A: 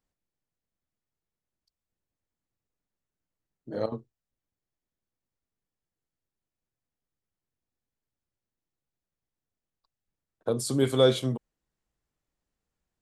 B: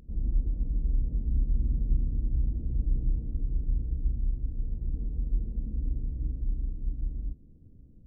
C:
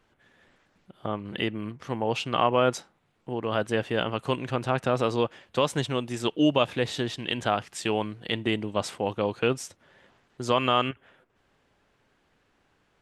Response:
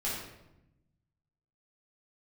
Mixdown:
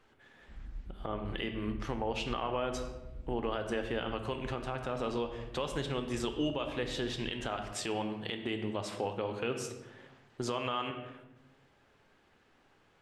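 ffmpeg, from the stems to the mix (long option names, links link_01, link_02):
-filter_complex "[1:a]adelay=400,volume=-17dB[link_01];[2:a]lowshelf=frequency=160:gain=-4.5,acompressor=threshold=-36dB:ratio=1.5,volume=-0.5dB,asplit=2[link_02][link_03];[link_03]volume=-9.5dB[link_04];[3:a]atrim=start_sample=2205[link_05];[link_04][link_05]afir=irnorm=-1:irlink=0[link_06];[link_01][link_02][link_06]amix=inputs=3:normalize=0,highshelf=frequency=7500:gain=-5,alimiter=limit=-22dB:level=0:latency=1:release=224"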